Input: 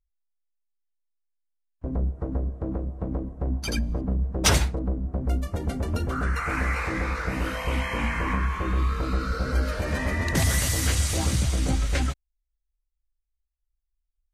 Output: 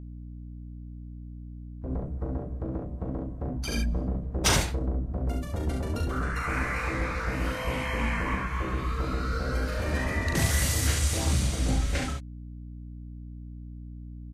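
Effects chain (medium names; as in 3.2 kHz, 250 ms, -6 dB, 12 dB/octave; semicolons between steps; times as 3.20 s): early reflections 39 ms -5 dB, 68 ms -5 dB; hum 60 Hz, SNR 11 dB; trim -4 dB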